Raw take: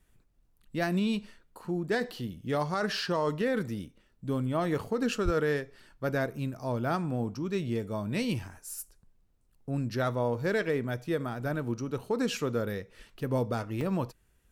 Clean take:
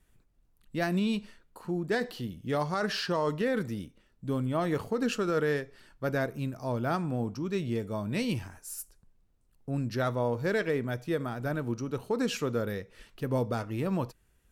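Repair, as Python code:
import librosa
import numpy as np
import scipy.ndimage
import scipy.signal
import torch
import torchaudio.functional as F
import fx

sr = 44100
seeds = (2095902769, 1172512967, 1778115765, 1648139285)

y = fx.highpass(x, sr, hz=140.0, slope=24, at=(5.24, 5.36), fade=0.02)
y = fx.fix_interpolate(y, sr, at_s=(13.81,), length_ms=2.7)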